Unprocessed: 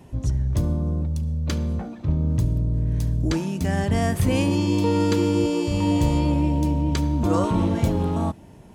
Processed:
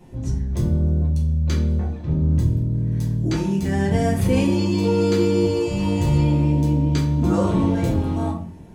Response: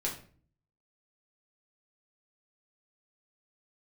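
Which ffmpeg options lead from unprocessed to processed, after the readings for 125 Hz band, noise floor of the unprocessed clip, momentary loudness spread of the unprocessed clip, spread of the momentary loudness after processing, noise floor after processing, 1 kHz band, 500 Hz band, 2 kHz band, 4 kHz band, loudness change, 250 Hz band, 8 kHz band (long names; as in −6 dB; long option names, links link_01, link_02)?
+3.0 dB, −45 dBFS, 6 LU, 5 LU, −34 dBFS, −1.0 dB, +3.5 dB, +0.5 dB, 0.0 dB, +2.5 dB, +2.0 dB, −1.0 dB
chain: -filter_complex "[1:a]atrim=start_sample=2205[link_01];[0:a][link_01]afir=irnorm=-1:irlink=0,volume=-3.5dB"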